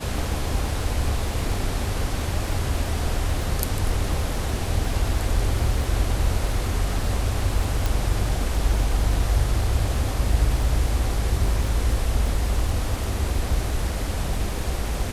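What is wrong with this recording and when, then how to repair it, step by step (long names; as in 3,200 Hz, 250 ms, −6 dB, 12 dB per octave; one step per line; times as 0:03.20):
surface crackle 29 per second −29 dBFS
0:07.86: click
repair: click removal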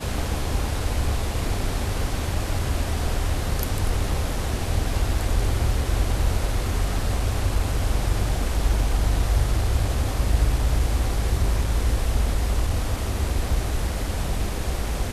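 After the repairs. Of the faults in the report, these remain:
none of them is left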